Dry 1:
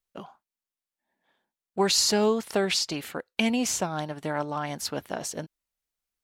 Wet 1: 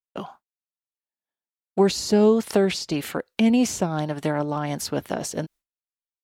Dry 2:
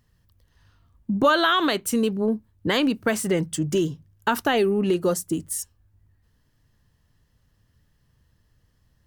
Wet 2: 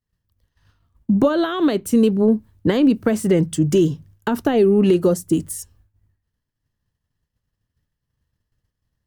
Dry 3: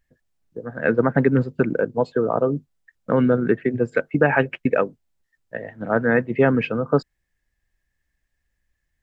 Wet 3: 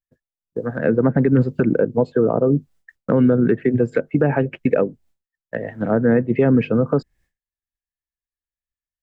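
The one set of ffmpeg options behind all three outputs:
ffmpeg -i in.wav -filter_complex "[0:a]agate=range=-33dB:threshold=-50dB:ratio=3:detection=peak,acrossover=split=540[link_01][link_02];[link_01]alimiter=limit=-16dB:level=0:latency=1:release=68[link_03];[link_02]acompressor=threshold=-37dB:ratio=5[link_04];[link_03][link_04]amix=inputs=2:normalize=0,volume=8dB" out.wav

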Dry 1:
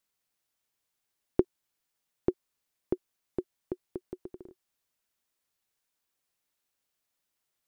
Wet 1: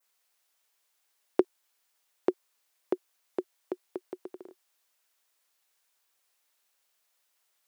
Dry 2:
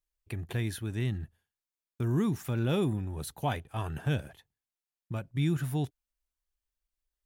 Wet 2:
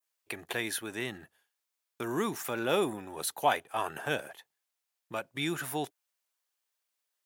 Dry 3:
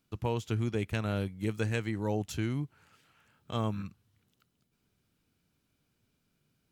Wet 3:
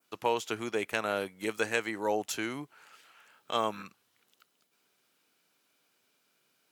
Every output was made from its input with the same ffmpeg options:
ffmpeg -i in.wav -af "highpass=520,adynamicequalizer=threshold=0.00141:dfrequency=3700:dqfactor=0.97:tfrequency=3700:tqfactor=0.97:attack=5:release=100:ratio=0.375:range=2.5:mode=cutabove:tftype=bell,volume=8dB" out.wav

